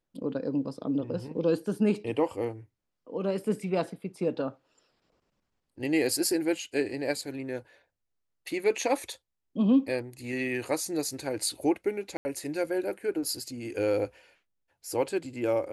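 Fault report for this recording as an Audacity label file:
12.170000	12.250000	dropout 80 ms

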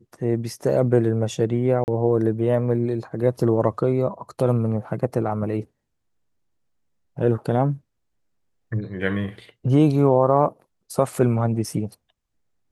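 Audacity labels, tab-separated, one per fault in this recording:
1.840000	1.880000	dropout 39 ms

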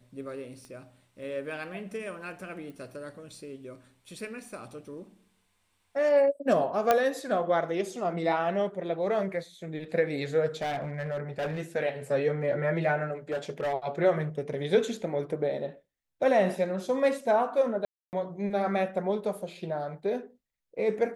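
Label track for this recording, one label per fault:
0.650000	0.650000	pop -34 dBFS
2.700000	2.700000	pop
6.910000	6.910000	pop -9 dBFS
10.610000	11.610000	clipped -28 dBFS
13.310000	13.730000	clipped -26.5 dBFS
17.850000	18.130000	dropout 279 ms

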